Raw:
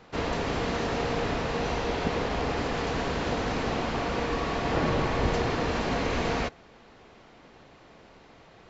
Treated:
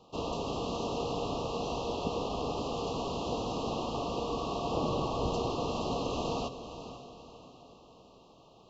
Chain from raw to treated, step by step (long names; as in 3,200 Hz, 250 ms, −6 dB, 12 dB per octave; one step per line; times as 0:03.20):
Chebyshev band-stop filter 1,200–2,700 Hz, order 4
low-shelf EQ 77 Hz −7 dB
feedback delay with all-pass diffusion 505 ms, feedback 42%, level −11 dB
level −4 dB